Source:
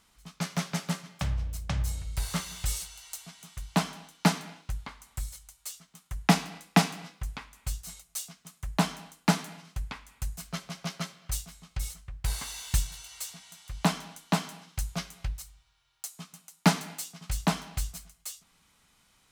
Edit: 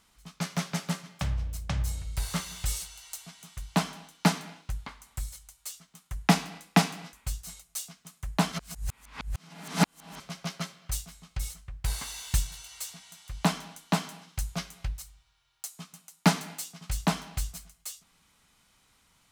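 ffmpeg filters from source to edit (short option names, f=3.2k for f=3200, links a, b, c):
-filter_complex "[0:a]asplit=4[a][b][c][d];[a]atrim=end=7.132[e];[b]atrim=start=7.528:end=8.922[f];[c]atrim=start=8.918:end=10.602,asetpts=PTS-STARTPTS,areverse[g];[d]atrim=start=10.598[h];[e][f]acrossfade=d=0.004:c1=hsin:c2=hsin[i];[i][g]acrossfade=d=0.004:c1=hsin:c2=hsin[j];[j][h]acrossfade=d=0.004:c1=hsin:c2=hsin"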